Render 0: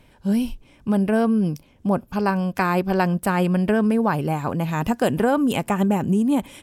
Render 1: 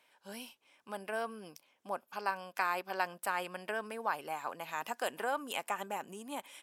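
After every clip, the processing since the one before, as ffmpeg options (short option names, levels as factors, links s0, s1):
-af "highpass=790,volume=0.376"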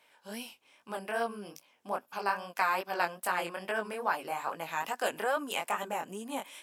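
-af "flanger=delay=17:depth=7.9:speed=2.4,volume=2.24"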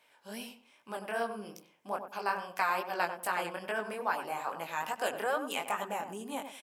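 -filter_complex "[0:a]asplit=2[s0][s1];[s1]adelay=95,lowpass=f=1100:p=1,volume=0.422,asplit=2[s2][s3];[s3]adelay=95,lowpass=f=1100:p=1,volume=0.26,asplit=2[s4][s5];[s5]adelay=95,lowpass=f=1100:p=1,volume=0.26[s6];[s0][s2][s4][s6]amix=inputs=4:normalize=0,volume=0.841"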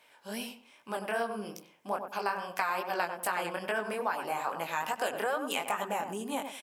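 -af "acompressor=threshold=0.0251:ratio=4,volume=1.68"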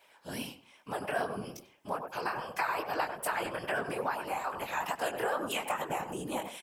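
-af "afftfilt=real='hypot(re,im)*cos(2*PI*random(0))':imag='hypot(re,im)*sin(2*PI*random(1))':win_size=512:overlap=0.75,volume=1.78"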